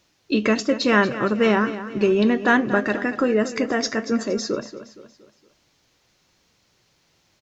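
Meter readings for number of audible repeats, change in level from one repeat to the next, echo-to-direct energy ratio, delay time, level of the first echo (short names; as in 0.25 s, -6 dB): 4, -7.5 dB, -12.0 dB, 0.233 s, -13.0 dB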